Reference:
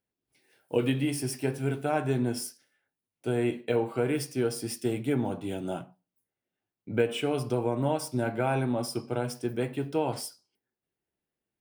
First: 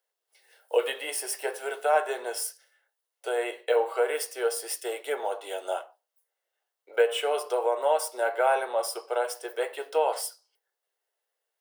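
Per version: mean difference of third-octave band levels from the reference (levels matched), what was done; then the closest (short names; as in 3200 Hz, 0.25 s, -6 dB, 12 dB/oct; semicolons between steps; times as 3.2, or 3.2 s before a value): 10.5 dB: steep high-pass 460 Hz 48 dB/oct; notch 2400 Hz, Q 8.5; dynamic EQ 5000 Hz, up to -5 dB, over -52 dBFS, Q 1.2; gain +6.5 dB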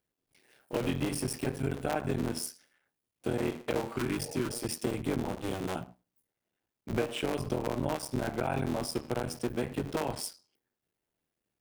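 6.5 dB: cycle switcher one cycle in 3, muted; spectral repair 3.98–4.5, 430–910 Hz; compressor 2.5:1, threshold -34 dBFS, peak gain reduction 10 dB; gain +4 dB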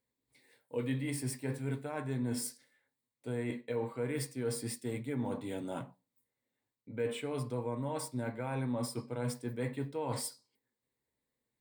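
3.0 dB: dynamic EQ 1500 Hz, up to +4 dB, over -49 dBFS, Q 1.5; reverse; compressor 6:1, threshold -35 dBFS, peak gain reduction 15 dB; reverse; ripple EQ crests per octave 1, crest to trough 9 dB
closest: third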